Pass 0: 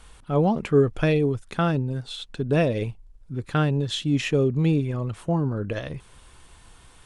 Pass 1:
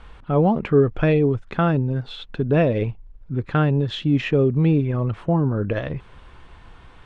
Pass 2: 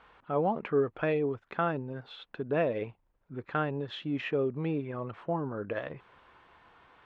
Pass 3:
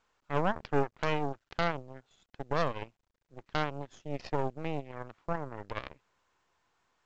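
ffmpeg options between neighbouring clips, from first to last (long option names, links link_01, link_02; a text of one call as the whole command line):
ffmpeg -i in.wav -filter_complex "[0:a]lowpass=2500,asplit=2[link_01][link_02];[link_02]alimiter=limit=-20dB:level=0:latency=1:release=318,volume=0dB[link_03];[link_01][link_03]amix=inputs=2:normalize=0" out.wav
ffmpeg -i in.wav -af "bandpass=frequency=1100:width_type=q:width=0.52:csg=0,volume=-6dB" out.wav
ffmpeg -i in.wav -af "aeval=exprs='0.211*(cos(1*acos(clip(val(0)/0.211,-1,1)))-cos(1*PI/2))+0.00841*(cos(3*acos(clip(val(0)/0.211,-1,1)))-cos(3*PI/2))+0.0422*(cos(6*acos(clip(val(0)/0.211,-1,1)))-cos(6*PI/2))+0.0237*(cos(7*acos(clip(val(0)/0.211,-1,1)))-cos(7*PI/2))':channel_layout=same,volume=-2.5dB" -ar 16000 -c:a pcm_mulaw out.wav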